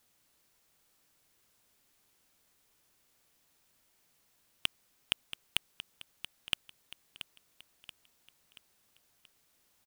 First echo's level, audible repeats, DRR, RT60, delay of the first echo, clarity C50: -12.0 dB, 4, none, none, 0.68 s, none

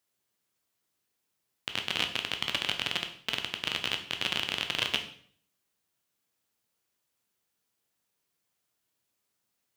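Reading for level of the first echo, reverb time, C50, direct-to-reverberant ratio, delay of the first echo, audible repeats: none, 0.55 s, 10.0 dB, 5.0 dB, none, none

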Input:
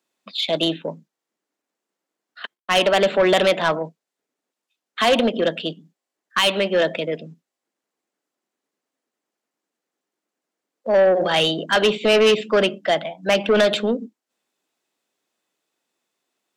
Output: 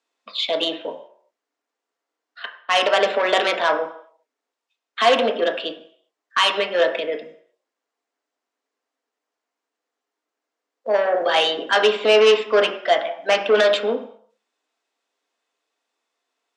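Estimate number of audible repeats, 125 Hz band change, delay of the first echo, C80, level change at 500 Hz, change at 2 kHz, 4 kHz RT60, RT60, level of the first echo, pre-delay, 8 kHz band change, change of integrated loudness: none, under -15 dB, none, 12.0 dB, 0.0 dB, +1.0 dB, 0.60 s, 0.60 s, none, 3 ms, -3.0 dB, 0.0 dB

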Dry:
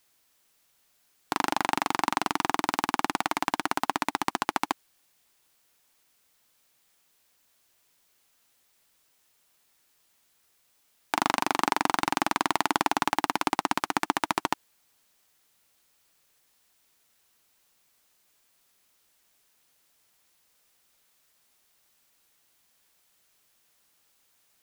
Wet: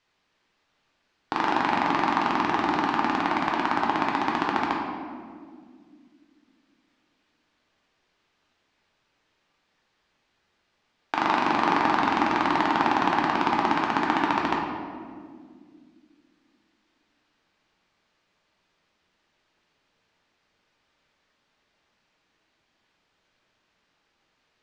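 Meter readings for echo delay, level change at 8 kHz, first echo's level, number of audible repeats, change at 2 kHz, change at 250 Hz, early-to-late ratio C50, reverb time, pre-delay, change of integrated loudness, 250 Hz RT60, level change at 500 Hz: none, under -10 dB, none, none, +3.5 dB, +6.0 dB, 1.5 dB, 2.0 s, 6 ms, +3.5 dB, 3.3 s, +5.0 dB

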